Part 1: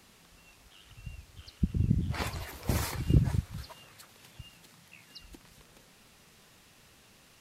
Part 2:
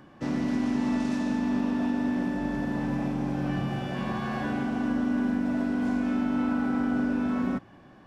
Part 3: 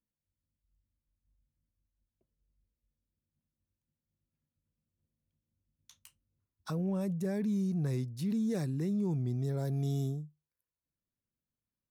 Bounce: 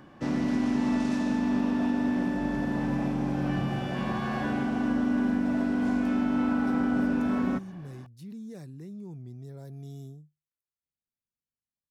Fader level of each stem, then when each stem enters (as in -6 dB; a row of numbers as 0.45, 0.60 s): off, +0.5 dB, -9.5 dB; off, 0.00 s, 0.00 s